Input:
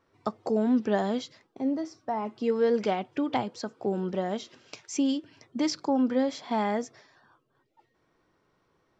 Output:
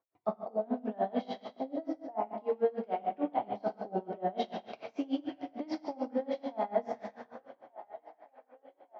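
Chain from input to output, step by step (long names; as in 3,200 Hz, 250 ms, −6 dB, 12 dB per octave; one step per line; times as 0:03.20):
noise gate with hold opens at −56 dBFS
parametric band 690 Hz +12.5 dB 0.64 octaves
reversed playback
downward compressor 5 to 1, threshold −37 dBFS, peak gain reduction 20 dB
reversed playback
band-pass filter 160–4,300 Hz
high-frequency loss of the air 210 metres
on a send: delay with a band-pass on its return 1,184 ms, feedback 65%, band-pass 1,100 Hz, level −15.5 dB
on the sum: dense smooth reverb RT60 1.4 s, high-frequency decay 0.95×, DRR 0 dB
tremolo with a sine in dB 6.8 Hz, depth 25 dB
level +7.5 dB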